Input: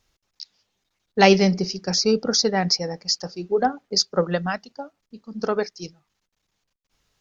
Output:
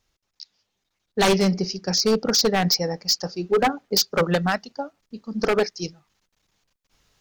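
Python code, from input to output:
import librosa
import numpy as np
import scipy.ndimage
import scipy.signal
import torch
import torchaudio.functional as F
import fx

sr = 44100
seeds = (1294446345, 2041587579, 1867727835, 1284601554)

y = fx.rider(x, sr, range_db=5, speed_s=2.0)
y = 10.0 ** (-14.0 / 20.0) * (np.abs((y / 10.0 ** (-14.0 / 20.0) + 3.0) % 4.0 - 2.0) - 1.0)
y = y * 10.0 ** (2.0 / 20.0)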